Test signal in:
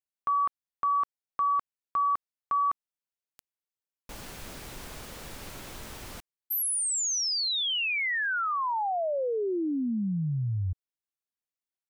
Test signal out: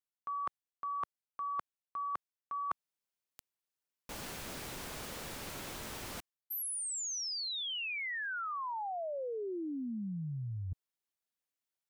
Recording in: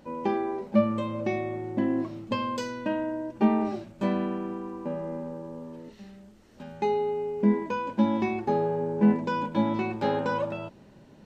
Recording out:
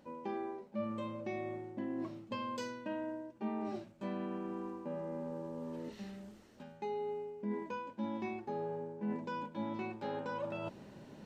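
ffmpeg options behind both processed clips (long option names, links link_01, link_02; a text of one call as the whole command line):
ffmpeg -i in.wav -af "lowshelf=frequency=67:gain=-10,areverse,acompressor=threshold=-40dB:ratio=4:attack=20:release=757:knee=1:detection=peak,areverse,volume=1dB" out.wav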